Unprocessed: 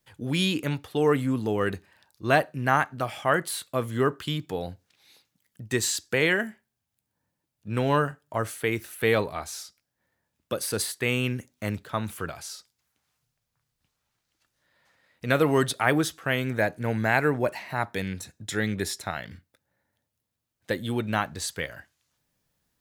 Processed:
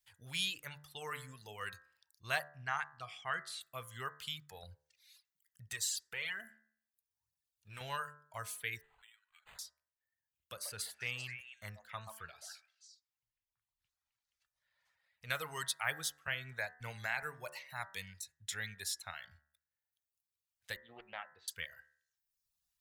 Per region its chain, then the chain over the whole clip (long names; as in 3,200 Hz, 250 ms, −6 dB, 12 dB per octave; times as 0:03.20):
0:02.48–0:03.61: high-frequency loss of the air 87 metres + notch filter 570 Hz, Q 5.4
0:04.63–0:07.81: phase shifter 1.1 Hz, delay 3.5 ms, feedback 49% + downward compressor 2 to 1, threshold −29 dBFS
0:08.81–0:09.59: downward compressor 16 to 1, threshold −28 dBFS + four-pole ladder high-pass 1,900 Hz, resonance 30% + linearly interpolated sample-rate reduction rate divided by 8×
0:10.52–0:15.30: high-shelf EQ 3,300 Hz −7.5 dB + echo through a band-pass that steps 131 ms, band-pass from 780 Hz, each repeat 1.4 octaves, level −1.5 dB
0:16.27–0:17.23: low-pass filter 3,900 Hz 6 dB per octave + downward expander −34 dBFS + multiband upward and downward compressor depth 70%
0:20.76–0:21.48: loudspeaker in its box 260–2,300 Hz, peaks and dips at 340 Hz +4 dB, 520 Hz +5 dB, 1,000 Hz −10 dB, 1,500 Hz −7 dB, 2,100 Hz −3 dB + highs frequency-modulated by the lows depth 0.18 ms
whole clip: reverb reduction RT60 1.1 s; guitar amp tone stack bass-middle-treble 10-0-10; hum removal 73.62 Hz, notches 27; level −4.5 dB